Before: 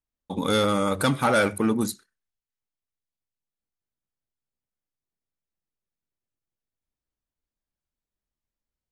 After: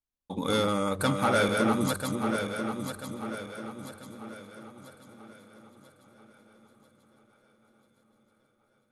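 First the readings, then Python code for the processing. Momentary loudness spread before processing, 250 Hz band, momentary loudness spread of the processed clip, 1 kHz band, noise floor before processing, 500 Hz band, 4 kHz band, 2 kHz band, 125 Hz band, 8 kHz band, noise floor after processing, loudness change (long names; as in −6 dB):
10 LU, −2.0 dB, 19 LU, −2.0 dB, below −85 dBFS, −2.5 dB, −2.5 dB, −2.0 dB, −2.0 dB, −2.0 dB, −71 dBFS, −5.5 dB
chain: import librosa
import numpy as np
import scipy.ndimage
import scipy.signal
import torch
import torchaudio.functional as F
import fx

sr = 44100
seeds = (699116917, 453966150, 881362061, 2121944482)

y = fx.reverse_delay_fb(x, sr, ms=495, feedback_pct=65, wet_db=-4)
y = fx.echo_swing(y, sr, ms=1279, ratio=3, feedback_pct=54, wet_db=-24.0)
y = y * librosa.db_to_amplitude(-4.5)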